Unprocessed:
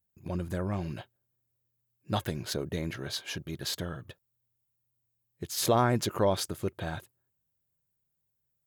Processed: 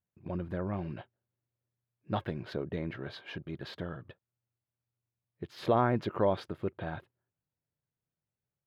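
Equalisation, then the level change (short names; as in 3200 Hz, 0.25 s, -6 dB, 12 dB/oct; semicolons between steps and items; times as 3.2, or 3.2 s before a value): air absorption 400 m; low shelf 81 Hz -10.5 dB; 0.0 dB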